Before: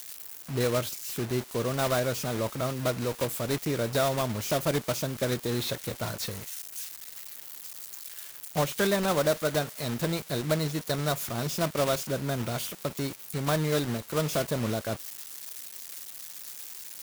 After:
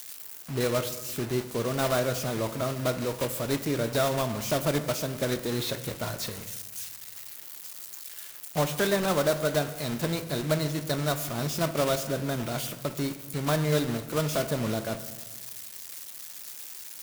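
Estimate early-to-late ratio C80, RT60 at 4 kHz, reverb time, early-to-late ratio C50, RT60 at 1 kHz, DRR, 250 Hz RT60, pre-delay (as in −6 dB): 13.5 dB, 0.70 s, 1.2 s, 12.0 dB, 1.1 s, 9.0 dB, 1.5 s, 3 ms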